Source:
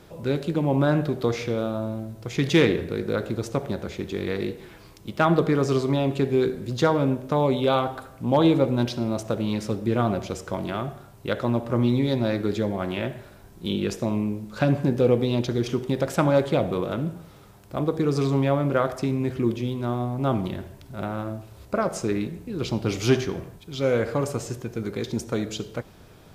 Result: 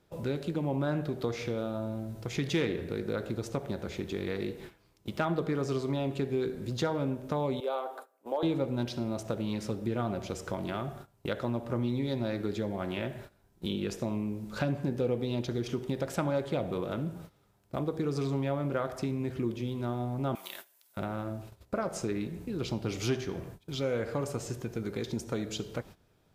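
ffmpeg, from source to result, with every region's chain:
ffmpeg -i in.wav -filter_complex "[0:a]asettb=1/sr,asplit=3[link_01][link_02][link_03];[link_01]atrim=end=7.604[link_04];[link_02]atrim=start=7.6:end=8.43,asetpts=PTS-STARTPTS,afade=type=in:duration=0.004:curve=qsin,afade=type=out:start_time=0.826:duration=0.004:curve=qsin,highpass=frequency=420:width=0.5412,highpass=frequency=420:width=1.3066,equalizer=frequency=3300:width=0.36:gain=-10[link_05];[link_03]atrim=start=8.426[link_06];[link_04][link_05]acrossfade=duration=0.004:curve1=hsin:curve2=qsin[link_07];[link_07][link_06]acrossfade=duration=0.004:curve1=qsin:curve2=hsin,asettb=1/sr,asplit=3[link_08][link_09][link_10];[link_08]atrim=end=20.354[link_11];[link_09]atrim=start=20.35:end=20.97,asetpts=PTS-STARTPTS,afade=type=in:duration=0.004:curve=qsin,afade=type=out:start_time=0.616:duration=0.004:curve=qsin,highpass=1000,aemphasis=mode=production:type=75fm[link_12];[link_10]atrim=start=20.966[link_13];[link_11][link_12]acrossfade=duration=0.004:curve1=hsin:curve2=qsin[link_14];[link_14][link_13]acrossfade=duration=0.004:curve1=qsin:curve2=hsin,agate=range=-18dB:threshold=-42dB:ratio=16:detection=peak,bandreject=frequency=1100:width=29,acompressor=threshold=-35dB:ratio=2" out.wav

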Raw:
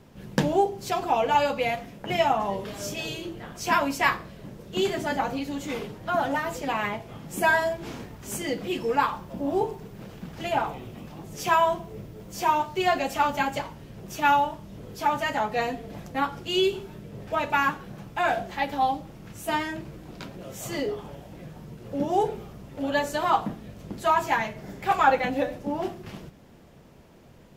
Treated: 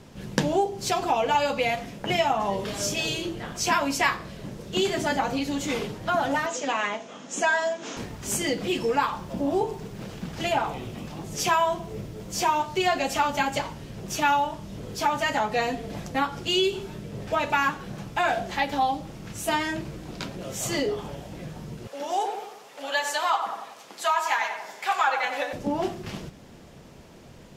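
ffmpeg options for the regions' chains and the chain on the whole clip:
ffmpeg -i in.wav -filter_complex "[0:a]asettb=1/sr,asplit=3[link_01][link_02][link_03];[link_01]atrim=end=6.464[link_04];[link_02]atrim=start=6.46:end=7.97,asetpts=PTS-STARTPTS,afade=type=in:duration=0.004:curve=qsin,afade=type=out:start_time=1.506:duration=0.004:curve=qsin,aeval=exprs='val(0)+0.0158*(sin(2*PI*50*n/s)+sin(2*PI*2*50*n/s)/2+sin(2*PI*3*50*n/s)/3+sin(2*PI*4*50*n/s)/4+sin(2*PI*5*50*n/s)/5)':channel_layout=same,highpass=frequency=260:width=0.5412,highpass=frequency=260:width=1.3066,equalizer=frequency=360:width_type=q:width=4:gain=-9,equalizer=frequency=830:width_type=q:width=4:gain=-4,equalizer=frequency=2200:width_type=q:width=4:gain=-4,equalizer=frequency=4600:width_type=q:width=4:gain=-6,equalizer=frequency=6600:width_type=q:width=4:gain=7,lowpass=frequency=7000:width=0.5412,lowpass=frequency=7000:width=1.3066[link_05];[link_03]atrim=start=7.966[link_06];[link_04][link_05]acrossfade=duration=0.004:curve1=hsin:curve2=qsin[link_07];[link_07][link_06]acrossfade=duration=0.004:curve1=qsin:curve2=hsin,asettb=1/sr,asplit=3[link_08][link_09][link_10];[link_08]atrim=end=21.874[link_11];[link_09]atrim=start=21.87:end=25.53,asetpts=PTS-STARTPTS,afade=type=in:duration=0.004:curve=qsin,afade=type=out:start_time=3.656:duration=0.004:curve=qsin,highpass=830,asplit=2[link_12][link_13];[link_13]adelay=93,lowpass=frequency=1600:poles=1,volume=-6dB,asplit=2[link_14][link_15];[link_15]adelay=93,lowpass=frequency=1600:poles=1,volume=0.54,asplit=2[link_16][link_17];[link_17]adelay=93,lowpass=frequency=1600:poles=1,volume=0.54,asplit=2[link_18][link_19];[link_19]adelay=93,lowpass=frequency=1600:poles=1,volume=0.54,asplit=2[link_20][link_21];[link_21]adelay=93,lowpass=frequency=1600:poles=1,volume=0.54,asplit=2[link_22][link_23];[link_23]adelay=93,lowpass=frequency=1600:poles=1,volume=0.54,asplit=2[link_24][link_25];[link_25]adelay=93,lowpass=frequency=1600:poles=1,volume=0.54[link_26];[link_12][link_14][link_16][link_18][link_20][link_22][link_24][link_26]amix=inputs=8:normalize=0,atrim=end_sample=161406[link_27];[link_10]atrim=start=25.526[link_28];[link_11][link_27]acrossfade=duration=0.004:curve1=hsin:curve2=qsin[link_29];[link_29][link_28]acrossfade=duration=0.004:curve1=qsin:curve2=hsin,lowpass=6600,aemphasis=mode=production:type=50fm,acompressor=threshold=-28dB:ratio=2,volume=4.5dB" out.wav

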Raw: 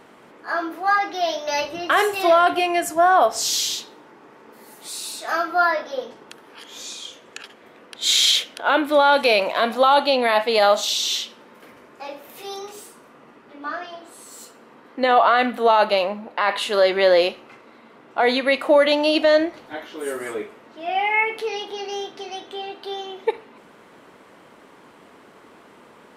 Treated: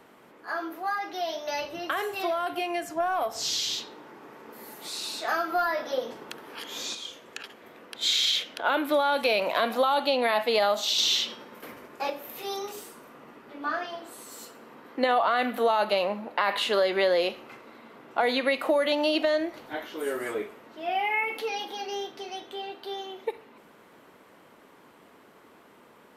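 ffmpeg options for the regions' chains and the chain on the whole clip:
ffmpeg -i in.wav -filter_complex "[0:a]asettb=1/sr,asplit=3[link_01][link_02][link_03];[link_01]atrim=end=3.004[link_04];[link_02]atrim=start=3:end=6.95,asetpts=PTS-STARTPTS,afade=type=in:duration=0.004:curve=qsin,afade=type=out:start_time=3.946:duration=0.004:curve=qsin,highpass=48,acontrast=28[link_05];[link_03]atrim=start=6.946[link_06];[link_04][link_05]acrossfade=duration=0.004:curve1=hsin:curve2=qsin[link_07];[link_07][link_06]acrossfade=duration=0.004:curve1=qsin:curve2=hsin,asettb=1/sr,asplit=3[link_08][link_09][link_10];[link_08]atrim=end=10.984[link_11];[link_09]atrim=start=10.98:end=12.1,asetpts=PTS-STARTPTS,afade=type=in:duration=0.004:curve=qsin,afade=type=out:start_time=1.116:duration=0.004:curve=qsin,bandreject=frequency=325.6:width_type=h:width=4,bandreject=frequency=651.2:width_type=h:width=4,bandreject=frequency=976.8:width_type=h:width=4,bandreject=frequency=1302.4:width_type=h:width=4,bandreject=frequency=1628:width_type=h:width=4,bandreject=frequency=1953.6:width_type=h:width=4,bandreject=frequency=2279.2:width_type=h:width=4,bandreject=frequency=2604.8:width_type=h:width=4,bandreject=frequency=2930.4:width_type=h:width=4,bandreject=frequency=3256:width_type=h:width=4,bandreject=frequency=3581.6:width_type=h:width=4,bandreject=frequency=3907.2:width_type=h:width=4,bandreject=frequency=4232.8:width_type=h:width=4,bandreject=frequency=4558.4:width_type=h:width=4,bandreject=frequency=4884:width_type=h:width=4,bandreject=frequency=5209.6:width_type=h:width=4,bandreject=frequency=5535.2:width_type=h:width=4,bandreject=frequency=5860.8:width_type=h:width=4,agate=range=-33dB:threshold=-45dB:ratio=3:release=100:detection=peak,acontrast=24[link_12];[link_10]atrim=start=12.096[link_13];[link_11][link_12]acrossfade=duration=0.004:curve1=hsin:curve2=qsin[link_14];[link_14][link_13]acrossfade=duration=0.004:curve1=qsin:curve2=hsin,asettb=1/sr,asplit=3[link_15][link_16][link_17];[link_15]atrim=end=21.234[link_18];[link_16]atrim=start=21.23:end=21.85,asetpts=PTS-STARTPTS,afade=type=in:duration=0.004:curve=qsin,afade=type=out:start_time=0.616:duration=0.004:curve=qsin,highshelf=frequency=12000:gain=7,aecho=1:1:3.7:0.61,atrim=end_sample=27342[link_19];[link_17]atrim=start=21.846[link_20];[link_18][link_19]acrossfade=duration=0.004:curve1=hsin:curve2=qsin[link_21];[link_21][link_20]acrossfade=duration=0.004:curve1=qsin:curve2=hsin,acrossover=split=210|6100[link_22][link_23][link_24];[link_22]acompressor=threshold=-45dB:ratio=4[link_25];[link_23]acompressor=threshold=-21dB:ratio=4[link_26];[link_24]acompressor=threshold=-50dB:ratio=4[link_27];[link_25][link_26][link_27]amix=inputs=3:normalize=0,equalizer=frequency=13000:width=2.7:gain=12,dynaudnorm=framelen=970:gausssize=13:maxgain=6dB,volume=-6dB" out.wav

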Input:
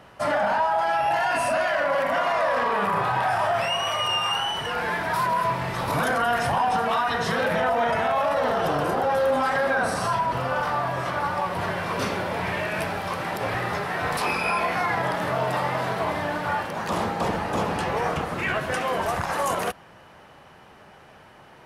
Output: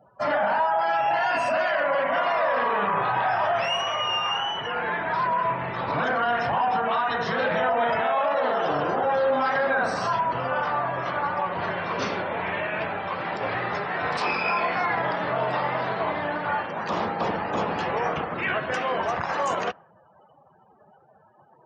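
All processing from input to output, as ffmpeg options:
ffmpeg -i in.wav -filter_complex "[0:a]asettb=1/sr,asplit=3[link_01][link_02][link_03];[link_01]atrim=end=3.824[link_04];[link_02]atrim=start=3.82:end=7.39,asetpts=PTS-STARTPTS,afade=type=in:duration=0.004:curve=qsin,afade=type=out:start_time=3.566:duration=0.004:curve=qsin,highshelf=frequency=6500:gain=-11,asoftclip=type=hard:threshold=-17.5dB[link_05];[link_03]atrim=start=7.386[link_06];[link_04][link_05]acrossfade=duration=0.004:curve1=hsin:curve2=qsin[link_07];[link_07][link_06]acrossfade=duration=0.004:curve1=qsin:curve2=hsin,asettb=1/sr,asplit=3[link_08][link_09][link_10];[link_08]atrim=end=8.014[link_11];[link_09]atrim=start=8.01:end=8.7,asetpts=PTS-STARTPTS,afade=type=in:duration=0.004:curve=qsin,afade=type=out:start_time=0.686:duration=0.004:curve=qsin,highpass=210,highshelf=frequency=11000:gain=-4[link_12];[link_10]atrim=start=8.696[link_13];[link_11][link_12]acrossfade=duration=0.004:curve1=hsin:curve2=qsin[link_14];[link_14][link_13]acrossfade=duration=0.004:curve1=qsin:curve2=hsin,asettb=1/sr,asplit=3[link_15][link_16][link_17];[link_15]atrim=end=12.224[link_18];[link_16]atrim=start=12.22:end=13.15,asetpts=PTS-STARTPTS,afade=type=in:duration=0.004:curve=qsin,afade=type=out:start_time=0.926:duration=0.004:curve=qsin,lowpass=4300,bandreject=frequency=60:width_type=h:width=6,bandreject=frequency=120:width_type=h:width=6,bandreject=frequency=180:width_type=h:width=6,bandreject=frequency=240:width_type=h:width=6,bandreject=frequency=300:width_type=h:width=6,bandreject=frequency=360:width_type=h:width=6,bandreject=frequency=420:width_type=h:width=6[link_19];[link_17]atrim=start=13.146[link_20];[link_18][link_19]acrossfade=duration=0.004:curve1=hsin:curve2=qsin[link_21];[link_21][link_20]acrossfade=duration=0.004:curve1=qsin:curve2=hsin,lowpass=frequency=7300:width=0.5412,lowpass=frequency=7300:width=1.3066,afftdn=noise_reduction=36:noise_floor=-43,highpass=frequency=190:poles=1" out.wav

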